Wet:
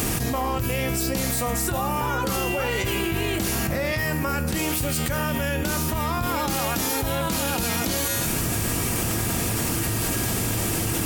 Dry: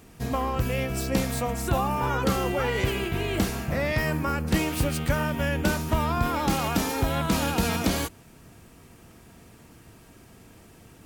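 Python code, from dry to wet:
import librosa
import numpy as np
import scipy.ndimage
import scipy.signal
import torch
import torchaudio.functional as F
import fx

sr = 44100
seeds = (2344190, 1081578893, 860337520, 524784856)

y = fx.high_shelf(x, sr, hz=5100.0, db=10.0)
y = fx.comb_fb(y, sr, f0_hz=110.0, decay_s=0.5, harmonics='odd', damping=0.0, mix_pct=70)
y = fx.env_flatten(y, sr, amount_pct=100)
y = y * librosa.db_to_amplitude(2.5)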